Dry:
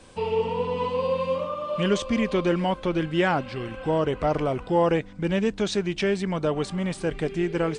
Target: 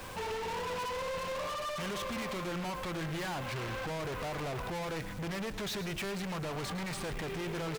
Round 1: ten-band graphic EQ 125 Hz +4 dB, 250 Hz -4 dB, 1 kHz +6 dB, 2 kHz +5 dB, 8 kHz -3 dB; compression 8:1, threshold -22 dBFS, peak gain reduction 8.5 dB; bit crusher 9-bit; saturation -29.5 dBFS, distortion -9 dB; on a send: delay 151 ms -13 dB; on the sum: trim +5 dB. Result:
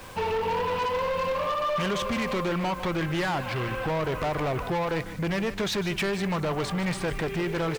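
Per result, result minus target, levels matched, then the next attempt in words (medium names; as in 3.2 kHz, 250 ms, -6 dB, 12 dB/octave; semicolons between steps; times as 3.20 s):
echo 41 ms late; saturation: distortion -5 dB
ten-band graphic EQ 125 Hz +4 dB, 250 Hz -4 dB, 1 kHz +6 dB, 2 kHz +5 dB, 8 kHz -3 dB; compression 8:1, threshold -22 dBFS, peak gain reduction 8.5 dB; bit crusher 9-bit; saturation -29.5 dBFS, distortion -9 dB; on a send: delay 110 ms -13 dB; on the sum: trim +5 dB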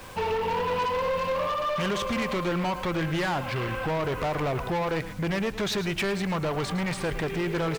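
saturation: distortion -5 dB
ten-band graphic EQ 125 Hz +4 dB, 250 Hz -4 dB, 1 kHz +6 dB, 2 kHz +5 dB, 8 kHz -3 dB; compression 8:1, threshold -22 dBFS, peak gain reduction 8.5 dB; bit crusher 9-bit; saturation -41 dBFS, distortion -3 dB; on a send: delay 110 ms -13 dB; on the sum: trim +5 dB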